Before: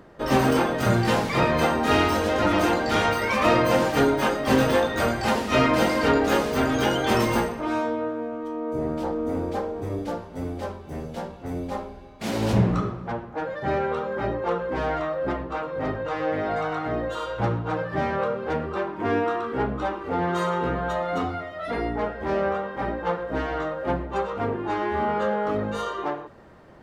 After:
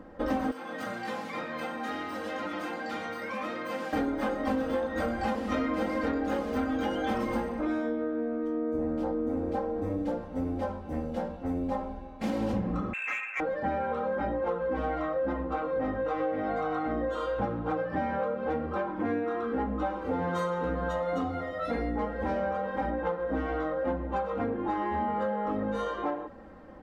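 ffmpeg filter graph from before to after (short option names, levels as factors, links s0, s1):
-filter_complex "[0:a]asettb=1/sr,asplit=3[s0][s1][s2];[s0]atrim=end=0.514[s3];[s1]atrim=start=0.51:end=3.93,asetpts=PTS-STARTPTS,afade=t=in:d=0.004:c=qsin,afade=t=out:st=3.416:d=0.004:c=qsin,highpass=f=130:w=0.5412,highpass=f=130:w=1.3066,equalizer=f=240:t=o:w=2.9:g=-8,acrossover=split=380|1300[s4][s5][s6];[s4]acompressor=threshold=0.00708:ratio=4[s7];[s5]acompressor=threshold=0.01:ratio=4[s8];[s6]acompressor=threshold=0.0126:ratio=4[s9];[s7][s8][s9]amix=inputs=3:normalize=0[s10];[s2]atrim=start=3.926[s11];[s3][s10]acrossfade=d=0.004:c1=hsin:c2=qsin[s12];[s12][s11]acrossfade=d=0.004:c1=qsin:c2=hsin,asettb=1/sr,asplit=3[s13][s14][s15];[s13]atrim=end=12.934[s16];[s14]atrim=start=12.93:end=13.4,asetpts=PTS-STARTPTS,afade=t=in:d=0.004:c=qsin,afade=t=out:st=0.466:d=0.004:c=qsin,lowpass=f=2400:t=q:w=0.5098,lowpass=f=2400:t=q:w=0.6013,lowpass=f=2400:t=q:w=0.9,lowpass=f=2400:t=q:w=2.563,afreqshift=-2800,asplit=2[s17][s18];[s18]highpass=f=720:p=1,volume=6.31,asoftclip=type=tanh:threshold=0.126[s19];[s17][s19]amix=inputs=2:normalize=0,lowpass=f=2100:p=1,volume=0.501,highpass=230[s20];[s15]atrim=start=13.396[s21];[s16][s20]acrossfade=d=0.004:c1=hsin:c2=qsin[s22];[s22][s21]acrossfade=d=0.004:c1=qsin:c2=hsin,asettb=1/sr,asplit=3[s23][s24][s25];[s23]atrim=end=19.894[s26];[s24]atrim=start=19.89:end=22.9,asetpts=PTS-STARTPTS,afade=t=in:d=0.004:c=qsin,afade=t=out:st=3.006:d=0.004:c=qsin,bass=f=250:g=2,treble=f=4000:g=8,bandreject=f=50:t=h:w=6,bandreject=f=100:t=h:w=6,bandreject=f=150:t=h:w=6,bandreject=f=200:t=h:w=6,bandreject=f=250:t=h:w=6,bandreject=f=300:t=h:w=6,bandreject=f=350:t=h:w=6,aeval=exprs='val(0)+0.00891*sin(2*PI*510*n/s)':c=same[s27];[s25]atrim=start=22.896[s28];[s26][s27]acrossfade=d=0.004:c1=hsin:c2=qsin[s29];[s29][s28]acrossfade=d=0.004:c1=qsin:c2=hsin,highshelf=f=2100:g=-12,aecho=1:1:3.8:0.77,acompressor=threshold=0.0447:ratio=6"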